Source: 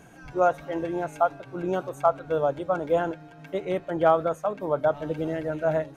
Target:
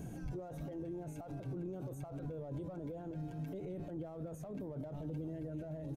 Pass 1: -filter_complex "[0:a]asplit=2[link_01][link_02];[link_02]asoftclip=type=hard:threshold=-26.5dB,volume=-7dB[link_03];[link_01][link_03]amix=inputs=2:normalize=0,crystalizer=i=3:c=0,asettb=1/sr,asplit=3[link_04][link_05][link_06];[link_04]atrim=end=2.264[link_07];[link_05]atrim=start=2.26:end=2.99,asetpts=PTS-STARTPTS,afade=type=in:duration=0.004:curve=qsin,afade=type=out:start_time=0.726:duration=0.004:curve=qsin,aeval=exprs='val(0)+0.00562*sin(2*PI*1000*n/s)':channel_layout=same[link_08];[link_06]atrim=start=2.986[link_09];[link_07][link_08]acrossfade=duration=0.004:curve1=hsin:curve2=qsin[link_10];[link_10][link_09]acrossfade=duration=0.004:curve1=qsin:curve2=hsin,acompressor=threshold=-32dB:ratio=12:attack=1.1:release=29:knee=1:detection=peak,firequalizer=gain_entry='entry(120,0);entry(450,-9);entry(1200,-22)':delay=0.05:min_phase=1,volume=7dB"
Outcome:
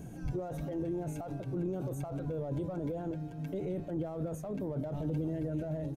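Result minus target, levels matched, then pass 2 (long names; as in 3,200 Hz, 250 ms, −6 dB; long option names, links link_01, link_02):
downward compressor: peak gain reduction −8 dB
-filter_complex "[0:a]asplit=2[link_01][link_02];[link_02]asoftclip=type=hard:threshold=-26.5dB,volume=-7dB[link_03];[link_01][link_03]amix=inputs=2:normalize=0,crystalizer=i=3:c=0,asettb=1/sr,asplit=3[link_04][link_05][link_06];[link_04]atrim=end=2.264[link_07];[link_05]atrim=start=2.26:end=2.99,asetpts=PTS-STARTPTS,afade=type=in:duration=0.004:curve=qsin,afade=type=out:start_time=0.726:duration=0.004:curve=qsin,aeval=exprs='val(0)+0.00562*sin(2*PI*1000*n/s)':channel_layout=same[link_08];[link_06]atrim=start=2.986[link_09];[link_07][link_08]acrossfade=duration=0.004:curve1=hsin:curve2=qsin[link_10];[link_10][link_09]acrossfade=duration=0.004:curve1=qsin:curve2=hsin,acompressor=threshold=-40.5dB:ratio=12:attack=1.1:release=29:knee=1:detection=peak,firequalizer=gain_entry='entry(120,0);entry(450,-9);entry(1200,-22)':delay=0.05:min_phase=1,volume=7dB"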